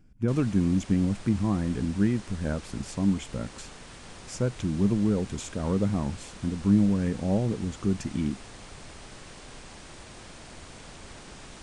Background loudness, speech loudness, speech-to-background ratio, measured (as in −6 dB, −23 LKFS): −45.5 LKFS, −27.5 LKFS, 18.0 dB